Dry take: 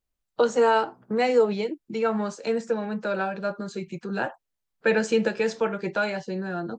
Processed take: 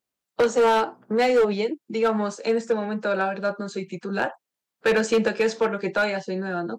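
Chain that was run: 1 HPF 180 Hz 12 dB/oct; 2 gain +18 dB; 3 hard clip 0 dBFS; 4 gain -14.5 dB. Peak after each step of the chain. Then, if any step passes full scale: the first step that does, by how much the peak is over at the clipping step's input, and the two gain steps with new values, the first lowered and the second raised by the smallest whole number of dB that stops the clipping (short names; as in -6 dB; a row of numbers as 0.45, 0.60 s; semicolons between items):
-10.0, +8.0, 0.0, -14.5 dBFS; step 2, 8.0 dB; step 2 +10 dB, step 4 -6.5 dB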